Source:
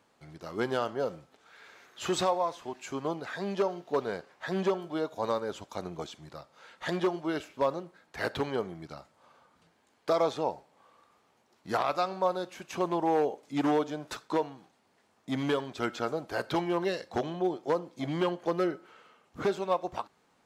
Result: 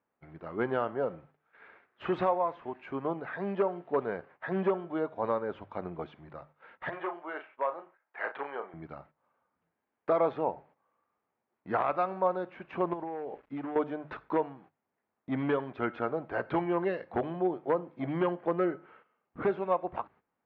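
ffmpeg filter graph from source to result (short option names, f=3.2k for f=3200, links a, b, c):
-filter_complex "[0:a]asettb=1/sr,asplit=3[a][b][c];[a]atrim=end=6.894[d];[b]atrim=start=6.89:end=8.74,asetpts=PTS-STARTPTS,afade=t=in:d=0.004:c=qsin,afade=t=out:st=1.846:d=0.004:c=qsin,highpass=700,lowpass=3k,asplit=2[e][f];[f]adelay=35,volume=-8.5dB[g];[e][g]amix=inputs=2:normalize=0,atrim=end_sample=81585[h];[c]atrim=start=8.736[i];[d][h]acrossfade=d=0.004:c1=hsin:c2=qsin[j];[j][i]acrossfade=d=0.004:c1=qsin:c2=hsin,asettb=1/sr,asplit=3[k][l][m];[k]atrim=end=12.934[n];[l]atrim=start=12.93:end=13.76,asetpts=PTS-STARTPTS,afade=t=in:d=0.004:c=qsin,afade=t=out:st=0.826:d=0.004:c=qsin,acompressor=threshold=-33dB:ratio=10:attack=3.2:release=140:knee=1:detection=peak,acrusher=bits=8:mix=0:aa=0.5[o];[m]atrim=start=13.756[p];[n][o]acrossfade=d=0.004:c1=hsin:c2=qsin[q];[q][p]acrossfade=d=0.004:c1=qsin:c2=hsin,lowpass=f=2.3k:w=0.5412,lowpass=f=2.3k:w=1.3066,agate=range=-15dB:threshold=-55dB:ratio=16:detection=peak,bandreject=f=50:t=h:w=6,bandreject=f=100:t=h:w=6,bandreject=f=150:t=h:w=6"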